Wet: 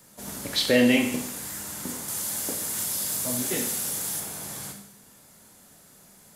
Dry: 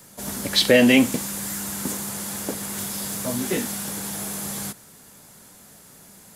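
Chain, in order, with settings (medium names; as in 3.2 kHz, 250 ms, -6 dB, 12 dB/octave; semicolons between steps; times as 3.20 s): 2.08–4.20 s: treble shelf 3.7 kHz +8.5 dB; Schroeder reverb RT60 0.69 s, combs from 25 ms, DRR 4 dB; trim -6.5 dB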